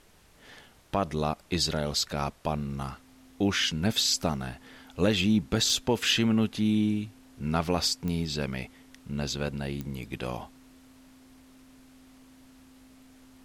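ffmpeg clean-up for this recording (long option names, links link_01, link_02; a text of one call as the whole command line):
ffmpeg -i in.wav -af "adeclick=threshold=4,bandreject=frequency=260:width=30,agate=range=-21dB:threshold=-47dB" out.wav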